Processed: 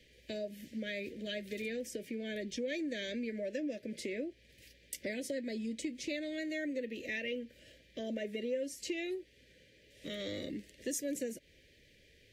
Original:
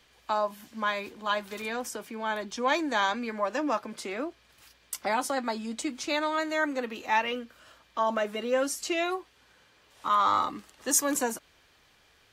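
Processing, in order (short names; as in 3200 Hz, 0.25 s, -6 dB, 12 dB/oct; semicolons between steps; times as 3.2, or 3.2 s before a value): elliptic band-stop 560–1900 Hz, stop band 40 dB; high shelf 3000 Hz -9.5 dB; compressor 3:1, threshold -41 dBFS, peak gain reduction 14 dB; gain +3.5 dB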